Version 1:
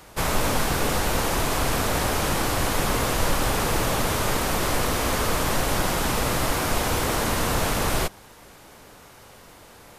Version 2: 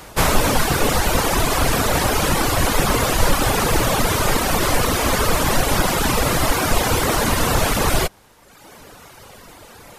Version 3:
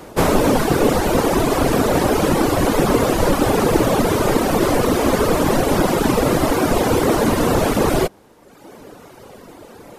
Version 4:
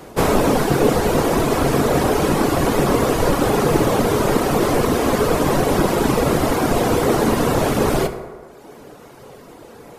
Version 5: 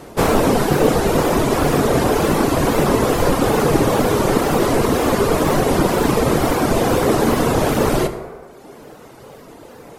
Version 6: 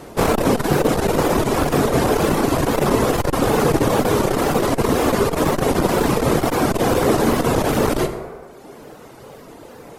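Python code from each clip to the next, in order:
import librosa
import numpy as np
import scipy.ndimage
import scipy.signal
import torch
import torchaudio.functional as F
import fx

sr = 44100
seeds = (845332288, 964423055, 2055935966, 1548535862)

y1 = fx.dereverb_blind(x, sr, rt60_s=1.2)
y1 = y1 * librosa.db_to_amplitude(8.5)
y2 = fx.peak_eq(y1, sr, hz=330.0, db=13.5, octaves=2.6)
y2 = y2 * librosa.db_to_amplitude(-5.5)
y3 = fx.rev_fdn(y2, sr, rt60_s=1.6, lf_ratio=0.75, hf_ratio=0.45, size_ms=42.0, drr_db=7.0)
y3 = y3 * librosa.db_to_amplitude(-1.5)
y4 = fx.wow_flutter(y3, sr, seeds[0], rate_hz=2.1, depth_cents=98.0)
y4 = y4 * librosa.db_to_amplitude(1.0)
y5 = fx.transformer_sat(y4, sr, knee_hz=210.0)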